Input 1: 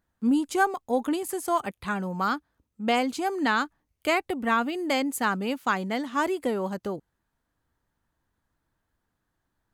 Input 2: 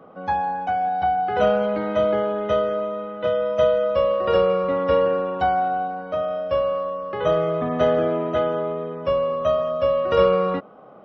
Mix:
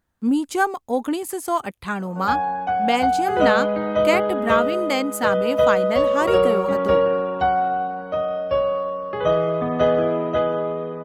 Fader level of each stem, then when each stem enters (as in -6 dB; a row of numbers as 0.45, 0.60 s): +3.0, +1.0 dB; 0.00, 2.00 s